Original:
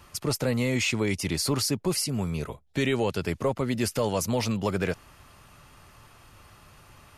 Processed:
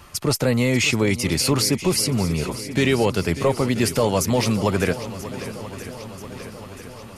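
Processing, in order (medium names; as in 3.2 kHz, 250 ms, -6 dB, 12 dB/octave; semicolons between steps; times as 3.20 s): shuffle delay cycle 985 ms, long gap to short 1.5:1, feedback 58%, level -14 dB; trim +6.5 dB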